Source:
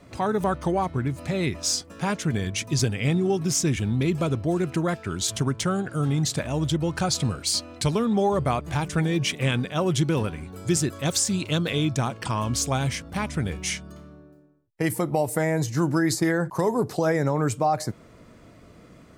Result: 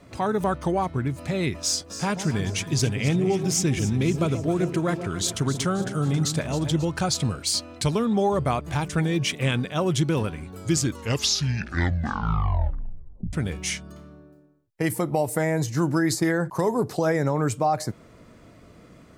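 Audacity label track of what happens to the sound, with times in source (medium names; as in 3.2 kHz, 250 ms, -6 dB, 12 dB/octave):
1.590000	6.850000	echo whose repeats swap between lows and highs 135 ms, split 890 Hz, feedback 69%, level -9 dB
10.590000	10.590000	tape stop 2.74 s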